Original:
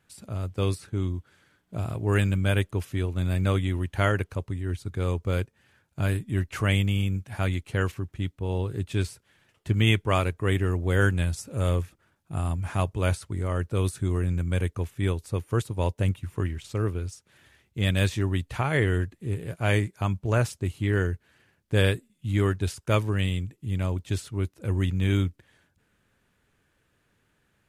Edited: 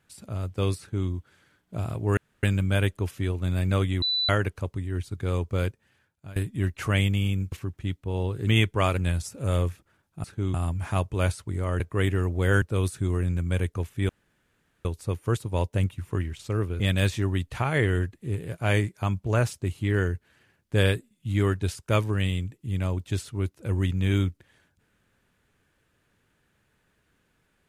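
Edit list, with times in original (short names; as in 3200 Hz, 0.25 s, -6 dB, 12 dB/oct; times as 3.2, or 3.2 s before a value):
0.79–1.09 copy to 12.37
2.17 insert room tone 0.26 s
3.76–4.03 bleep 3980 Hz -22.5 dBFS
5.42–6.1 fade out, to -21 dB
7.26–7.87 cut
8.82–9.78 cut
10.28–11.1 move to 13.63
15.1 insert room tone 0.76 s
17.05–17.79 cut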